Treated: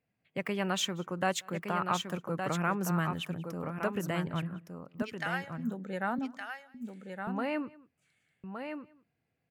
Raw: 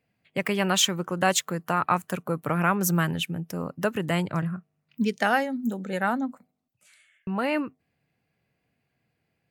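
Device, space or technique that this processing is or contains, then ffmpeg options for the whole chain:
ducked delay: -filter_complex "[0:a]asettb=1/sr,asplit=3[link_01][link_02][link_03];[link_01]atrim=end=5.024[link_04];[link_02]atrim=start=5.02:end=5.58,asetpts=PTS-STARTPTS,afade=type=in:duration=0.004:curve=qsin,afade=type=out:start_time=0.556:duration=0.004:curve=qsin,highpass=1200[link_05];[link_03]atrim=start=5.576[link_06];[link_04][link_05]acrossfade=duration=0.004:curve1=hsin:curve2=qsin[link_07];[link_07][link_06]acrossfade=duration=0.004:curve1=qsin:curve2=hsin,highshelf=frequency=4300:gain=-8,asplit=3[link_08][link_09][link_10];[link_09]adelay=186,volume=-6.5dB[link_11];[link_10]apad=whole_len=427566[link_12];[link_11][link_12]sidechaincompress=threshold=-43dB:ratio=12:attack=16:release=494[link_13];[link_08][link_13]amix=inputs=2:normalize=0,aecho=1:1:1166:0.473,volume=-7dB"

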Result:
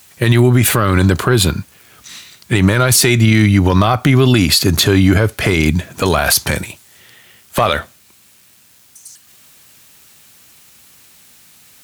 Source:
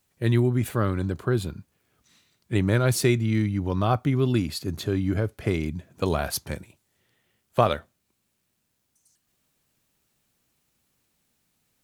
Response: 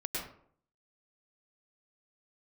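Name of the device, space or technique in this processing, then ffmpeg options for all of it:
mastering chain: -af "highpass=46,equalizer=frequency=420:width_type=o:width=2.5:gain=-2,acompressor=threshold=-24dB:ratio=2.5,asoftclip=type=tanh:threshold=-14dB,tiltshelf=frequency=740:gain=-4.5,alimiter=level_in=24dB:limit=-1dB:release=50:level=0:latency=1,volume=-1dB"

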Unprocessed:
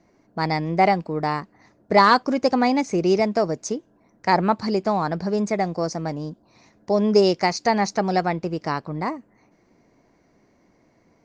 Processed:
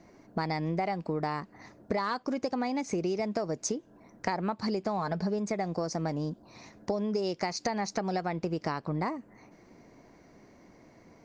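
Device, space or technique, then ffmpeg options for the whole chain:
serial compression, leveller first: -filter_complex "[0:a]asettb=1/sr,asplit=3[link_01][link_02][link_03];[link_01]atrim=end=4.984[link_04];[link_02]atrim=start=4.98:end=5.39,asetpts=PTS-STARTPTS,afade=type=in:duration=0.004:curve=qsin,afade=type=out:start_time=0.406:duration=0.004:curve=qsin,aecho=1:1:4.7:0.52,atrim=end_sample=18081[link_05];[link_03]atrim=start=5.386[link_06];[link_04][link_05]acrossfade=duration=0.004:curve1=hsin:curve2=qsin[link_07];[link_07][link_06]acrossfade=duration=0.004:curve1=qsin:curve2=hsin,acompressor=threshold=-22dB:ratio=2.5,acompressor=threshold=-33dB:ratio=5,volume=4dB"

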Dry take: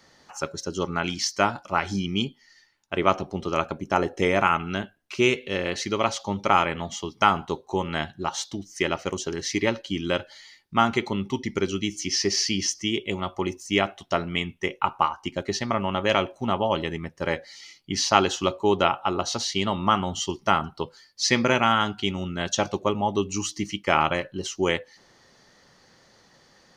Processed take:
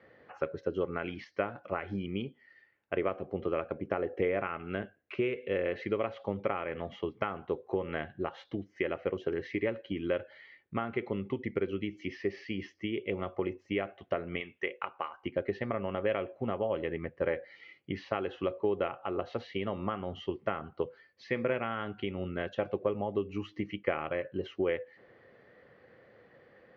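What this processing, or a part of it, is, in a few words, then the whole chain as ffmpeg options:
bass amplifier: -filter_complex "[0:a]acompressor=threshold=-29dB:ratio=4,highpass=80,equalizer=frequency=170:width_type=q:width=4:gain=-6,equalizer=frequency=250:width_type=q:width=4:gain=-3,equalizer=frequency=490:width_type=q:width=4:gain=8,equalizer=frequency=910:width_type=q:width=4:gain=-10,equalizer=frequency=1300:width_type=q:width=4:gain=-4,lowpass=frequency=2300:width=0.5412,lowpass=frequency=2300:width=1.3066,asettb=1/sr,asplit=3[link_01][link_02][link_03];[link_01]atrim=end=14.404[link_04];[link_02]atrim=start=14.4:end=15.23,asetpts=PTS-STARTPTS,afade=type=in:duration=0.004:curve=qsin,afade=type=out:start_time=0.826:duration=0.004:curve=qsin,aemphasis=mode=production:type=riaa[link_05];[link_03]atrim=start=15.226[link_06];[link_04][link_05]acrossfade=duration=0.004:curve1=hsin:curve2=qsin[link_07];[link_07][link_06]acrossfade=duration=0.004:curve1=qsin:curve2=hsin"

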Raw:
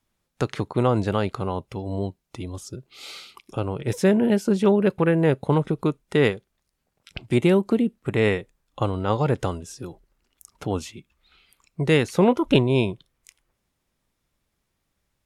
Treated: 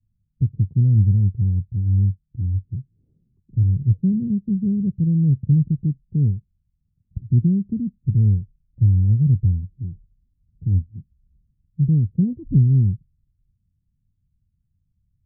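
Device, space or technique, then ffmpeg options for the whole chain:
the neighbour's flat through the wall: -af "lowpass=frequency=170:width=0.5412,lowpass=frequency=170:width=1.3066,equalizer=frequency=95:width_type=o:width=0.56:gain=7,volume=8dB"

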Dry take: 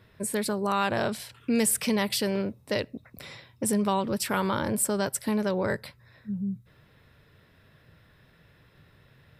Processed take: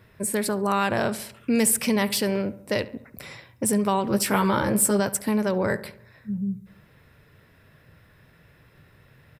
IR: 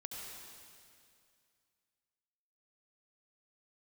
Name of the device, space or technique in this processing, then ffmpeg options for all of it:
exciter from parts: -filter_complex "[0:a]asettb=1/sr,asplit=3[link_01][link_02][link_03];[link_01]atrim=end=4.094[link_04];[link_02]atrim=start=4.09:end=5,asetpts=PTS-STARTPTS,afade=type=in:duration=0.004:curve=qsin,afade=type=out:start_time=0.906:duration=0.004:curve=qsin,asplit=2[link_05][link_06];[link_06]adelay=15,volume=-2.5dB[link_07];[link_05][link_07]amix=inputs=2:normalize=0,atrim=end_sample=40131[link_08];[link_03]atrim=start=4.996[link_09];[link_04][link_08]acrossfade=duration=0.004:curve1=hsin:curve2=qsin[link_10];[link_10][link_09]acrossfade=duration=0.004:curve1=qsin:curve2=hsin,asplit=2[link_11][link_12];[link_12]highpass=frequency=2600:width=0.5412,highpass=frequency=2600:width=1.3066,asoftclip=type=tanh:threshold=-29dB,highpass=2400,volume=-7dB[link_13];[link_11][link_13]amix=inputs=2:normalize=0,asplit=2[link_14][link_15];[link_15]adelay=70,lowpass=frequency=2300:poles=1,volume=-16dB,asplit=2[link_16][link_17];[link_17]adelay=70,lowpass=frequency=2300:poles=1,volume=0.55,asplit=2[link_18][link_19];[link_19]adelay=70,lowpass=frequency=2300:poles=1,volume=0.55,asplit=2[link_20][link_21];[link_21]adelay=70,lowpass=frequency=2300:poles=1,volume=0.55,asplit=2[link_22][link_23];[link_23]adelay=70,lowpass=frequency=2300:poles=1,volume=0.55[link_24];[link_14][link_16][link_18][link_20][link_22][link_24]amix=inputs=6:normalize=0,volume=3dB"

